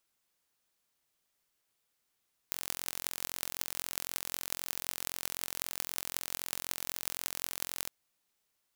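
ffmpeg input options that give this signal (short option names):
-f lavfi -i "aevalsrc='0.596*eq(mod(n,1005),0)*(0.5+0.5*eq(mod(n,8040),0))':d=5.37:s=44100"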